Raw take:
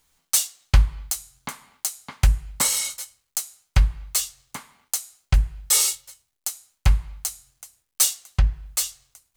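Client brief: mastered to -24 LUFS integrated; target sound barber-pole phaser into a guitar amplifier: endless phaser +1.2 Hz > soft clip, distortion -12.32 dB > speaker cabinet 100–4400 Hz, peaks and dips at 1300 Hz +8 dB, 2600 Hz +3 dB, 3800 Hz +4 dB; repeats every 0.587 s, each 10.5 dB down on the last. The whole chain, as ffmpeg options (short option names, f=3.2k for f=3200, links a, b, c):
-filter_complex "[0:a]aecho=1:1:587|1174|1761:0.299|0.0896|0.0269,asplit=2[a][b];[b]afreqshift=1.2[c];[a][c]amix=inputs=2:normalize=1,asoftclip=threshold=-14.5dB,highpass=100,equalizer=f=1.3k:t=q:w=4:g=8,equalizer=f=2.6k:t=q:w=4:g=3,equalizer=f=3.8k:t=q:w=4:g=4,lowpass=f=4.4k:w=0.5412,lowpass=f=4.4k:w=1.3066,volume=12dB"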